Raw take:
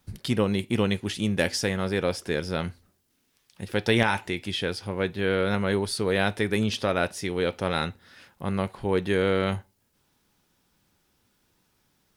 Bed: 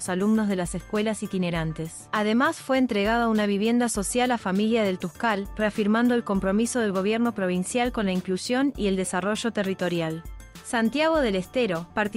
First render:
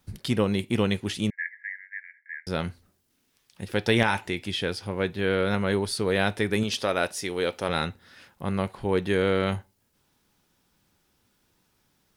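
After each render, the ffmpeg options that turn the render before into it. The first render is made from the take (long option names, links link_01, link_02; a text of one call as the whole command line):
ffmpeg -i in.wav -filter_complex "[0:a]asettb=1/sr,asplit=3[link_01][link_02][link_03];[link_01]atrim=end=1.304[link_04];[link_02]atrim=start=1.3:end=2.47,asetpts=PTS-STARTPTS,afade=type=in:duration=0.004:curve=qsin,afade=type=out:start_time=1.166:duration=0.004:curve=qsin,asuperpass=centerf=1900:order=12:qfactor=3.2[link_05];[link_03]atrim=start=2.466[link_06];[link_04][link_05]acrossfade=duration=0.004:curve1=hsin:curve2=qsin[link_07];[link_07][link_06]acrossfade=duration=0.004:curve1=qsin:curve2=hsin,asettb=1/sr,asplit=3[link_08][link_09][link_10];[link_08]atrim=end=6.634[link_11];[link_09]atrim=start=6.63:end=7.69,asetpts=PTS-STARTPTS,afade=type=in:duration=0.004:curve=qsin,afade=type=out:start_time=1.056:duration=0.004:curve=qsin,bass=frequency=250:gain=-7,treble=frequency=4000:gain=4[link_12];[link_10]atrim=start=7.686[link_13];[link_11][link_12]acrossfade=duration=0.004:curve1=hsin:curve2=qsin[link_14];[link_14][link_13]acrossfade=duration=0.004:curve1=qsin:curve2=hsin" out.wav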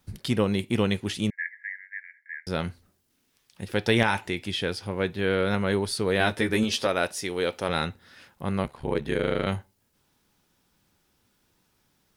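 ffmpeg -i in.wav -filter_complex "[0:a]asettb=1/sr,asplit=3[link_01][link_02][link_03];[link_01]atrim=end=6.194[link_04];[link_02]atrim=start=6.19:end=6.87,asetpts=PTS-STARTPTS,afade=type=in:duration=0.004:curve=qsin,afade=type=out:start_time=0.676:duration=0.004:curve=qsin,asplit=2[link_05][link_06];[link_06]adelay=13,volume=-3.5dB[link_07];[link_05][link_07]amix=inputs=2:normalize=0,atrim=end_sample=29988[link_08];[link_03]atrim=start=6.866[link_09];[link_04][link_08]acrossfade=duration=0.004:curve1=hsin:curve2=qsin[link_10];[link_10][link_09]acrossfade=duration=0.004:curve1=qsin:curve2=hsin,asettb=1/sr,asplit=3[link_11][link_12][link_13];[link_11]atrim=end=8.634[link_14];[link_12]atrim=start=8.63:end=9.47,asetpts=PTS-STARTPTS,afade=type=in:duration=0.004:curve=qsin,afade=type=out:start_time=0.836:duration=0.004:curve=qsin,aeval=exprs='val(0)*sin(2*PI*35*n/s)':channel_layout=same[link_15];[link_13]atrim=start=9.466[link_16];[link_14][link_15]acrossfade=duration=0.004:curve1=hsin:curve2=qsin[link_17];[link_17][link_16]acrossfade=duration=0.004:curve1=qsin:curve2=hsin" out.wav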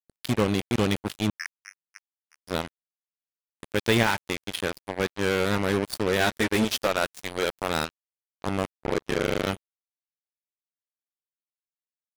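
ffmpeg -i in.wav -af "acrusher=bits=3:mix=0:aa=0.5" out.wav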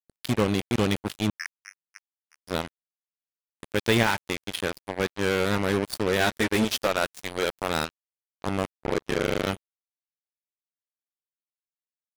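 ffmpeg -i in.wav -af anull out.wav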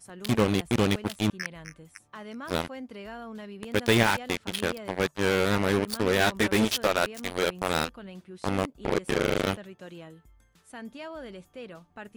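ffmpeg -i in.wav -i bed.wav -filter_complex "[1:a]volume=-18dB[link_01];[0:a][link_01]amix=inputs=2:normalize=0" out.wav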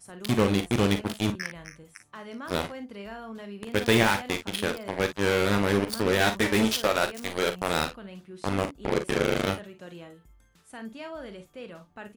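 ffmpeg -i in.wav -af "aecho=1:1:40|54:0.299|0.237" out.wav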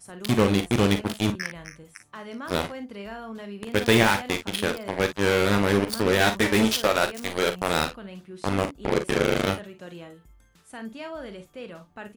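ffmpeg -i in.wav -af "volume=2.5dB" out.wav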